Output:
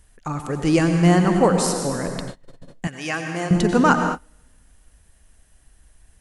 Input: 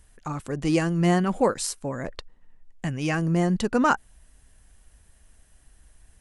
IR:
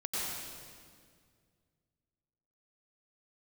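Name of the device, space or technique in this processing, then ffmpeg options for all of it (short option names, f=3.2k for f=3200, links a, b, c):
keyed gated reverb: -filter_complex "[0:a]asplit=3[a][b][c];[1:a]atrim=start_sample=2205[d];[b][d]afir=irnorm=-1:irlink=0[e];[c]apad=whole_len=273571[f];[e][f]sidechaingate=range=-33dB:threshold=-44dB:ratio=16:detection=peak,volume=-6.5dB[g];[a][g]amix=inputs=2:normalize=0,asettb=1/sr,asplit=3[h][i][j];[h]atrim=end=2.874[k];[i]atrim=start=2.87:end=3.51,asetpts=PTS-STARTPTS,afade=t=in:d=0.004:c=qsin,afade=t=out:st=0.636:d=0.004:c=qsin,highpass=f=850:p=1[l];[j]atrim=start=3.506[m];[k][l]acrossfade=d=0.004:c1=hsin:c2=qsin[n];[n][m]acrossfade=d=0.004:c1=qsin:c2=hsin,volume=1.5dB"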